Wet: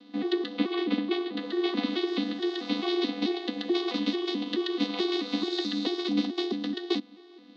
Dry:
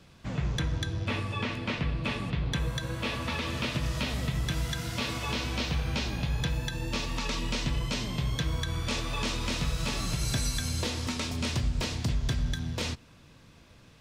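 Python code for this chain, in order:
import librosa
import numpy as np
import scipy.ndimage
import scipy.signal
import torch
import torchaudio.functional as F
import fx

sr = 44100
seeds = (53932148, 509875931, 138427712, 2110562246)

p1 = fx.vocoder_arp(x, sr, chord='bare fifth', root=59, every_ms=402)
p2 = fx.rider(p1, sr, range_db=10, speed_s=2.0)
p3 = p1 + F.gain(torch.from_numpy(p2), 2.5).numpy()
p4 = fx.stretch_grains(p3, sr, factor=0.54, grain_ms=24.0)
y = fx.cabinet(p4, sr, low_hz=240.0, low_slope=24, high_hz=4700.0, hz=(320.0, 510.0, 990.0, 1500.0, 2400.0, 3900.0), db=(4, -8, -8, -9, -7, 9))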